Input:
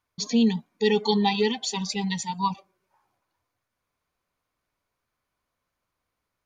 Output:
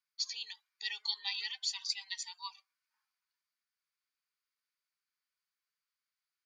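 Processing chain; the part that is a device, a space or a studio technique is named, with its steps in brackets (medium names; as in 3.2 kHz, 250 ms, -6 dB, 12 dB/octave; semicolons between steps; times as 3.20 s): headphones lying on a table (high-pass 1.4 kHz 24 dB/octave; peaking EQ 4.7 kHz +8.5 dB 0.28 oct); trim -9 dB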